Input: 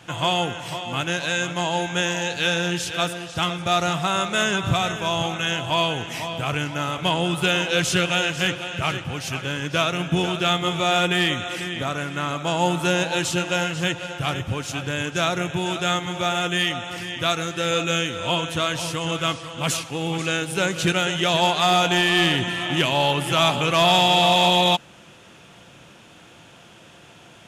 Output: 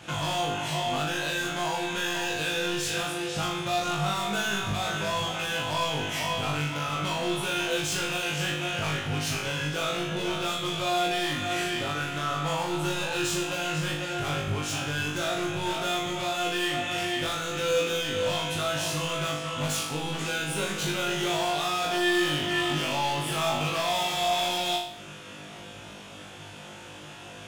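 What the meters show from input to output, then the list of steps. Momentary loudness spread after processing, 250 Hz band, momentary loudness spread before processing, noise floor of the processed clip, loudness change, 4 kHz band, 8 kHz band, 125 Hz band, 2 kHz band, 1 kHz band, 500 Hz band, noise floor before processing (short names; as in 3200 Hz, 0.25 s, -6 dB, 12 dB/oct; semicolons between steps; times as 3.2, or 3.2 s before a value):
4 LU, -6.0 dB, 9 LU, -44 dBFS, -6.0 dB, -6.5 dB, -3.5 dB, -6.0 dB, -5.5 dB, -6.0 dB, -5.0 dB, -48 dBFS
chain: compressor 2.5:1, threshold -29 dBFS, peak gain reduction 10 dB; hard clip -29.5 dBFS, distortion -8 dB; flutter echo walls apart 3.4 m, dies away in 0.6 s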